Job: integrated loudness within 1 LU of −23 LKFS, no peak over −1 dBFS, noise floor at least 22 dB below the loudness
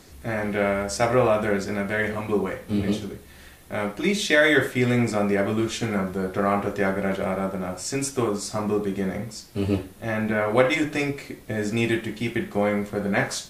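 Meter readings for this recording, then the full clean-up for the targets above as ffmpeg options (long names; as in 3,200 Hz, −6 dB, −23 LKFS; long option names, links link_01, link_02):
integrated loudness −24.5 LKFS; sample peak −4.0 dBFS; target loudness −23.0 LKFS
→ -af "volume=1.5dB"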